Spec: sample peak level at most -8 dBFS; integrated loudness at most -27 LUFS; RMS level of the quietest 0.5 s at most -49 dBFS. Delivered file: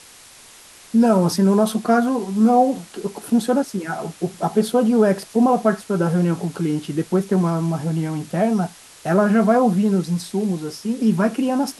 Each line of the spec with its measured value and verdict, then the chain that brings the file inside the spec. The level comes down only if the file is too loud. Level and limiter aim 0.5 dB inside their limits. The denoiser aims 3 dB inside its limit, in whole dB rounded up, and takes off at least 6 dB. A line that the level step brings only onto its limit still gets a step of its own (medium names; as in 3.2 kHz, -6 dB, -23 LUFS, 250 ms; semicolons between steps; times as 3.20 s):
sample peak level -4.5 dBFS: fail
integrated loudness -19.5 LUFS: fail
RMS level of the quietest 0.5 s -45 dBFS: fail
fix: trim -8 dB